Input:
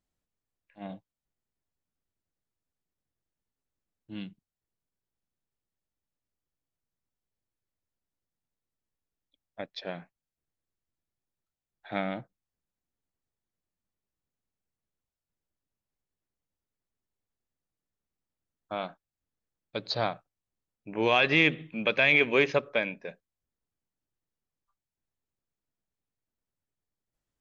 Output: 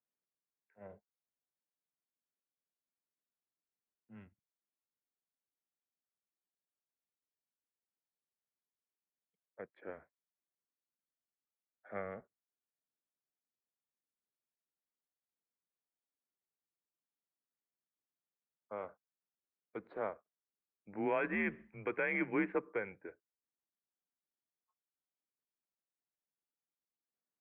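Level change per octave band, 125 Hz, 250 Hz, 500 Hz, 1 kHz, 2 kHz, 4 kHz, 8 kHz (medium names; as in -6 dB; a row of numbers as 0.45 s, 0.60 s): -14.0 dB, -7.0 dB, -10.0 dB, -11.0 dB, -13.0 dB, under -30 dB, no reading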